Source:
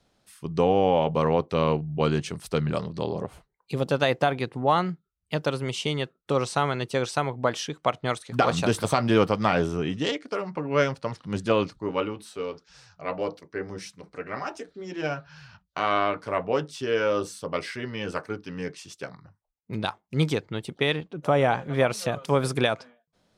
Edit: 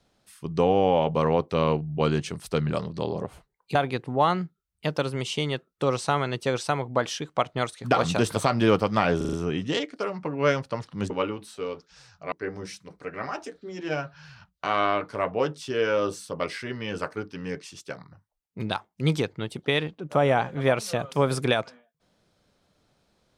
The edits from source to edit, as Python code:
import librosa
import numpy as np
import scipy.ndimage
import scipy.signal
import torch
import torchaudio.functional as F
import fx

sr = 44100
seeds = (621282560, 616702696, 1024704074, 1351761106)

y = fx.edit(x, sr, fx.cut(start_s=3.75, length_s=0.48),
    fx.stutter(start_s=9.65, slice_s=0.04, count=5),
    fx.cut(start_s=11.42, length_s=0.46),
    fx.cut(start_s=13.1, length_s=0.35), tone=tone)